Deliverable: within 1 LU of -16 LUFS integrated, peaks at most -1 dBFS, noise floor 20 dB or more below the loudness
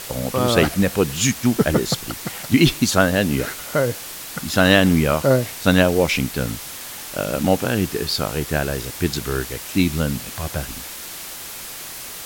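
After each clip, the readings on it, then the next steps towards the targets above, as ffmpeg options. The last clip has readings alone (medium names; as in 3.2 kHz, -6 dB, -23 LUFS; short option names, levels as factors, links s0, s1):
noise floor -34 dBFS; noise floor target -40 dBFS; loudness -20.0 LUFS; peak level -2.0 dBFS; loudness target -16.0 LUFS
-> -af "afftdn=nr=6:nf=-34"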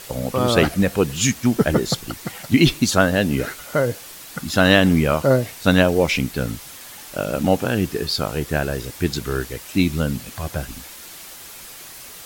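noise floor -39 dBFS; noise floor target -40 dBFS
-> -af "afftdn=nr=6:nf=-39"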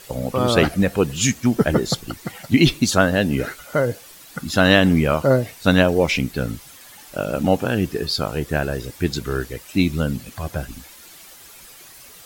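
noise floor -44 dBFS; loudness -20.0 LUFS; peak level -2.0 dBFS; loudness target -16.0 LUFS
-> -af "volume=1.58,alimiter=limit=0.891:level=0:latency=1"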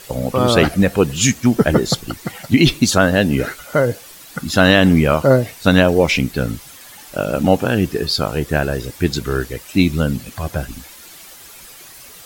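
loudness -16.5 LUFS; peak level -1.0 dBFS; noise floor -40 dBFS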